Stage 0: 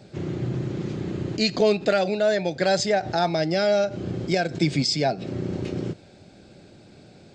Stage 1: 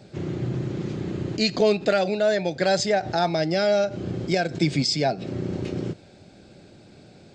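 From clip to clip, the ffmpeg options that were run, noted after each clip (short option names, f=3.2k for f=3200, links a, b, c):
-af anull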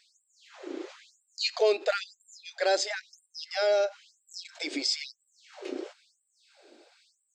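-af "afftfilt=real='re*gte(b*sr/1024,250*pow(7500/250,0.5+0.5*sin(2*PI*1*pts/sr)))':imag='im*gte(b*sr/1024,250*pow(7500/250,0.5+0.5*sin(2*PI*1*pts/sr)))':win_size=1024:overlap=0.75,volume=-3.5dB"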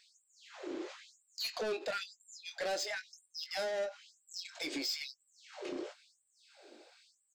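-filter_complex "[0:a]asplit=2[a][b];[b]acompressor=threshold=-34dB:ratio=6,volume=-0.5dB[c];[a][c]amix=inputs=2:normalize=0,asoftclip=type=tanh:threshold=-25dB,asplit=2[d][e];[e]adelay=22,volume=-10dB[f];[d][f]amix=inputs=2:normalize=0,volume=-7dB"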